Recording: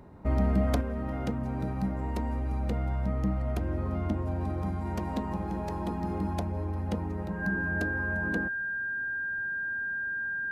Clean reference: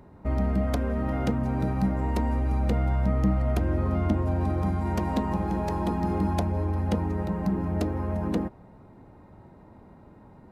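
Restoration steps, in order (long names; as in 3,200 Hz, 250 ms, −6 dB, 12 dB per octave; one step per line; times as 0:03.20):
notch filter 1,600 Hz, Q 30
level correction +5.5 dB, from 0:00.81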